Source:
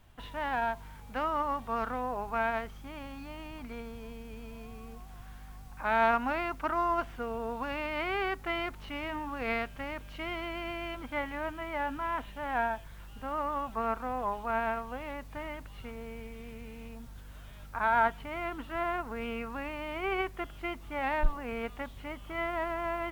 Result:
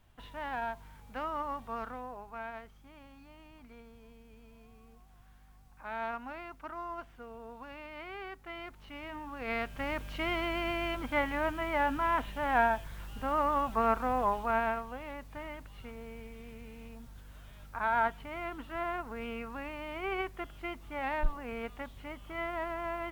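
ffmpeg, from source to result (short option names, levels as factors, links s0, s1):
-af "volume=3.35,afade=t=out:st=1.65:d=0.61:silence=0.473151,afade=t=in:st=8.44:d=1.02:silence=0.446684,afade=t=in:st=9.46:d=0.49:silence=0.375837,afade=t=out:st=14.2:d=0.74:silence=0.446684"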